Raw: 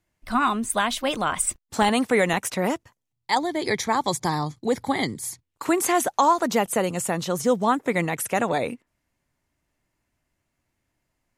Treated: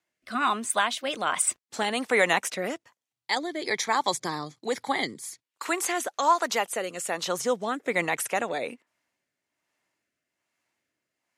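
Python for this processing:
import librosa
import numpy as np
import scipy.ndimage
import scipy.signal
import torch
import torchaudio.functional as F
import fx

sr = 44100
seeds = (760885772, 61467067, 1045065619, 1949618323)

y = fx.weighting(x, sr, curve='A')
y = fx.rotary(y, sr, hz=1.2)
y = fx.low_shelf(y, sr, hz=240.0, db=-10.0, at=(5.22, 7.23))
y = F.gain(torch.from_numpy(y), 1.5).numpy()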